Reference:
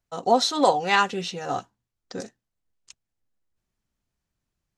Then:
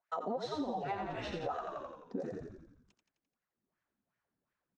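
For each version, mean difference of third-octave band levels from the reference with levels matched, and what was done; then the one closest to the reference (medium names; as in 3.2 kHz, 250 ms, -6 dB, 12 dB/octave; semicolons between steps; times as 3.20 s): 10.0 dB: bass shelf 210 Hz -5.5 dB; wah-wah 2.7 Hz 220–1800 Hz, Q 2.9; frequency-shifting echo 86 ms, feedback 57%, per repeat -44 Hz, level -5.5 dB; compression 8:1, threshold -42 dBFS, peak gain reduction 19.5 dB; trim +7.5 dB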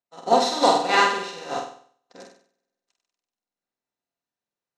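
7.5 dB: spectral levelling over time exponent 0.6; bass shelf 150 Hz -8.5 dB; on a send: flutter echo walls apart 8.2 m, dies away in 1.3 s; on the sum: upward expansion 2.5:1, over -38 dBFS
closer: second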